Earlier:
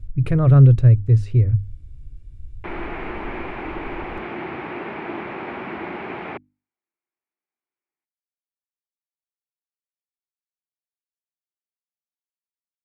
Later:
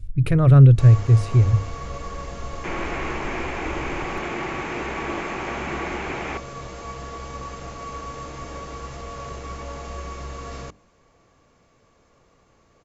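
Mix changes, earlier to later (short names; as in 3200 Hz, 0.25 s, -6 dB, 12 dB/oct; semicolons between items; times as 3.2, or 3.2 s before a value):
first sound: unmuted; master: add high shelf 3000 Hz +10.5 dB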